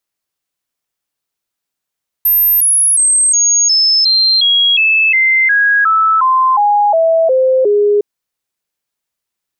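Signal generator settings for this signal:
stepped sweep 13,200 Hz down, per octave 3, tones 16, 0.36 s, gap 0.00 s −7.5 dBFS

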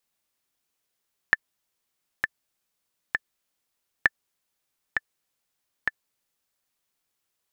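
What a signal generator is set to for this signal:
click track 66 BPM, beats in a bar 3, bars 2, 1,760 Hz, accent 6 dB −4 dBFS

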